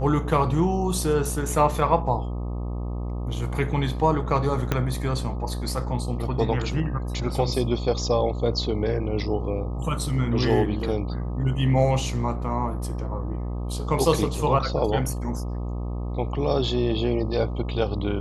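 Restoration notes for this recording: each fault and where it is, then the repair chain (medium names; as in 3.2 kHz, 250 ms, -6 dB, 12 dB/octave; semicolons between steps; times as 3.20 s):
buzz 60 Hz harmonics 21 -29 dBFS
4.72 s: pop -9 dBFS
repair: de-click; de-hum 60 Hz, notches 21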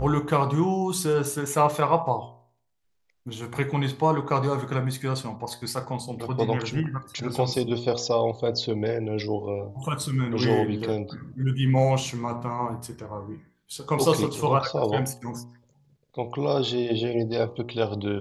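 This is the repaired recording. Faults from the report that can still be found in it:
4.72 s: pop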